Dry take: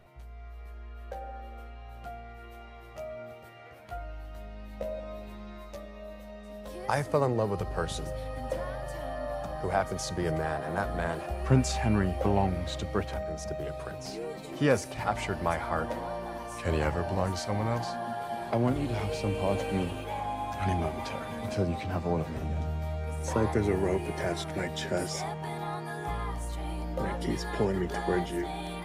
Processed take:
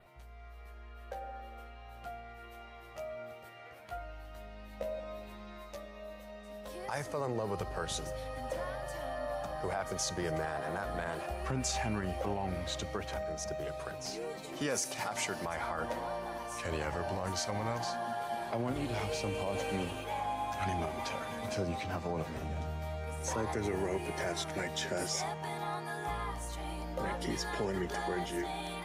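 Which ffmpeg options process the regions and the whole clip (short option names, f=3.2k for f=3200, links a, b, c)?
-filter_complex "[0:a]asettb=1/sr,asplit=3[a][b][c];[a]atrim=end=14.614[d];[b]atrim=start=14.61:end=15.45,asetpts=PTS-STARTPTS,afade=t=in:d=0.004:c=qsin,afade=t=out:st=0.836:d=0.004:c=qsin,highpass=160,bass=f=250:g=2,treble=f=4k:g=7[e];[c]atrim=start=15.446[f];[d][e]acrossfade=d=0.004:c1=hsin:c2=qsin[g];[g][f]acrossfade=d=0.004:c1=qsin:c2=hsin,lowshelf=f=430:g=-7,alimiter=level_in=1dB:limit=-24dB:level=0:latency=1:release=54,volume=-1dB,adynamicequalizer=threshold=0.00126:dfrequency=6200:dqfactor=3.3:tfrequency=6200:tqfactor=3.3:attack=5:release=100:ratio=0.375:range=2.5:mode=boostabove:tftype=bell"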